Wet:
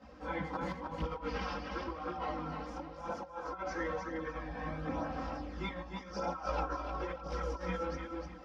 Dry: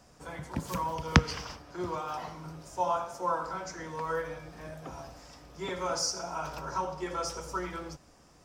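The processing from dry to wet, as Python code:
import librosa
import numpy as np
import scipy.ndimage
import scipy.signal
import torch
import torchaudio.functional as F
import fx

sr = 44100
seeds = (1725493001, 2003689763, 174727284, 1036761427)

y = scipy.signal.sosfilt(scipy.signal.butter(4, 49.0, 'highpass', fs=sr, output='sos'), x)
y = y + 1.0 * np.pad(y, (int(3.8 * sr / 1000.0), 0))[:len(y)]
y = fx.over_compress(y, sr, threshold_db=-37.0, ratio=-0.5)
y = fx.air_absorb(y, sr, metres=280.0)
y = fx.echo_feedback(y, sr, ms=304, feedback_pct=28, wet_db=-5)
y = fx.chorus_voices(y, sr, voices=2, hz=0.48, base_ms=18, depth_ms=3.2, mix_pct=65)
y = y * 10.0 ** (1.0 / 20.0)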